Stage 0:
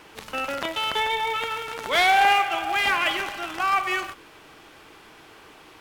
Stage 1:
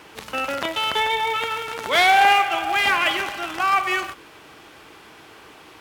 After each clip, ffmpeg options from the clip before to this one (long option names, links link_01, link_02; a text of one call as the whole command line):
ffmpeg -i in.wav -af "highpass=46,volume=3dB" out.wav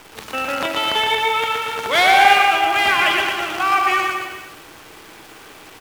ffmpeg -i in.wav -filter_complex "[0:a]asplit=2[link_01][link_02];[link_02]aecho=0:1:120|228|325.2|412.7|491.4:0.631|0.398|0.251|0.158|0.1[link_03];[link_01][link_03]amix=inputs=2:normalize=0,acrusher=bits=8:dc=4:mix=0:aa=0.000001,volume=1.5dB" out.wav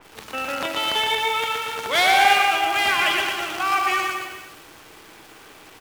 ffmpeg -i in.wav -af "adynamicequalizer=threshold=0.0501:dfrequency=3300:dqfactor=0.7:tfrequency=3300:tqfactor=0.7:attack=5:release=100:ratio=0.375:range=2.5:mode=boostabove:tftype=highshelf,volume=-4.5dB" out.wav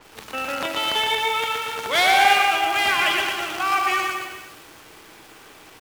ffmpeg -i in.wav -af "acrusher=bits=7:mix=0:aa=0.5" out.wav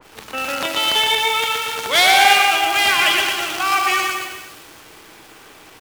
ffmpeg -i in.wav -af "adynamicequalizer=threshold=0.0224:dfrequency=2700:dqfactor=0.7:tfrequency=2700:tqfactor=0.7:attack=5:release=100:ratio=0.375:range=3:mode=boostabove:tftype=highshelf,volume=2.5dB" out.wav